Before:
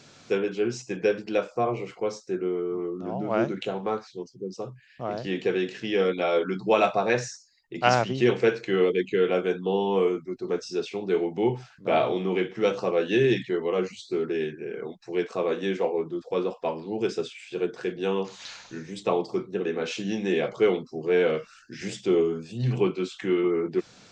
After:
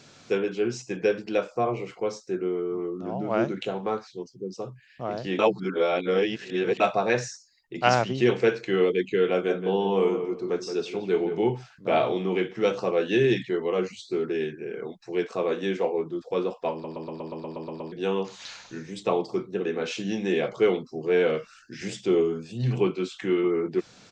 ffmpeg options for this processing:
-filter_complex "[0:a]asplit=3[s0][s1][s2];[s0]afade=t=out:st=9.43:d=0.02[s3];[s1]asplit=2[s4][s5];[s5]adelay=173,lowpass=f=2000:p=1,volume=0.398,asplit=2[s6][s7];[s7]adelay=173,lowpass=f=2000:p=1,volume=0.29,asplit=2[s8][s9];[s9]adelay=173,lowpass=f=2000:p=1,volume=0.29[s10];[s4][s6][s8][s10]amix=inputs=4:normalize=0,afade=t=in:st=9.43:d=0.02,afade=t=out:st=11.49:d=0.02[s11];[s2]afade=t=in:st=11.49:d=0.02[s12];[s3][s11][s12]amix=inputs=3:normalize=0,asplit=13[s13][s14][s15][s16][s17][s18][s19][s20][s21][s22][s23][s24][s25];[s13]atrim=end=5.392[s26];[s14]atrim=start=5.388:end=6.802,asetpts=PTS-STARTPTS,areverse[s27];[s15]atrim=start=6.798:end=16.842[s28];[s16]atrim=start=16.718:end=16.842[s29];[s17]atrim=start=16.718:end=16.842[s30];[s18]atrim=start=16.718:end=16.842[s31];[s19]atrim=start=16.718:end=16.842[s32];[s20]atrim=start=16.718:end=16.842[s33];[s21]atrim=start=16.718:end=16.842[s34];[s22]atrim=start=16.718:end=16.842[s35];[s23]atrim=start=16.718:end=16.842[s36];[s24]atrim=start=16.718:end=16.842[s37];[s25]atrim=start=17.918[s38];[s26][s27]acrossfade=d=0.004:c1=hsin:c2=hsin[s39];[s39][s28]acrossfade=d=0.004:c1=hsin:c2=hsin[s40];[s40][s29]acrossfade=d=0.004:c1=hsin:c2=hsin[s41];[s41][s30]acrossfade=d=0.004:c1=hsin:c2=hsin[s42];[s42][s31]acrossfade=d=0.004:c1=hsin:c2=hsin[s43];[s43][s32]acrossfade=d=0.004:c1=hsin:c2=hsin[s44];[s44][s33]acrossfade=d=0.004:c1=hsin:c2=hsin[s45];[s45][s34]acrossfade=d=0.004:c1=hsin:c2=hsin[s46];[s46][s35]acrossfade=d=0.004:c1=hsin:c2=hsin[s47];[s47][s36]acrossfade=d=0.004:c1=hsin:c2=hsin[s48];[s48][s37]acrossfade=d=0.004:c1=hsin:c2=hsin[s49];[s49][s38]acrossfade=d=0.004:c1=hsin:c2=hsin"

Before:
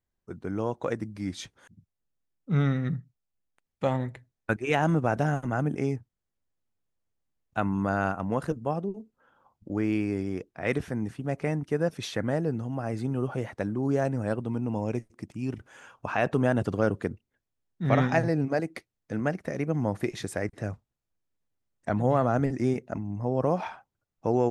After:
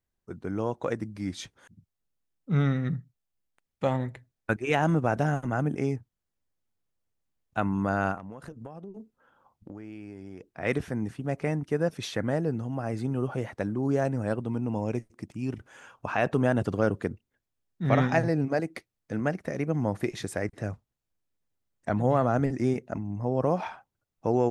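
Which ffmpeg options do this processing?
-filter_complex "[0:a]asettb=1/sr,asplit=3[s0][s1][s2];[s0]atrim=end=8.174[s3];[s1]atrim=start=8.17:end=10.53,asetpts=PTS-STARTPTS,afade=t=in:d=0.004:c=qsin,afade=t=out:st=2.356:d=0.004:c=qsin,acompressor=threshold=0.0141:ratio=16:attack=3.2:release=140:knee=1:detection=peak[s4];[s2]atrim=start=10.526[s5];[s3][s4]acrossfade=d=0.004:c1=hsin:c2=qsin[s6];[s6][s5]acrossfade=d=0.004:c1=qsin:c2=hsin"

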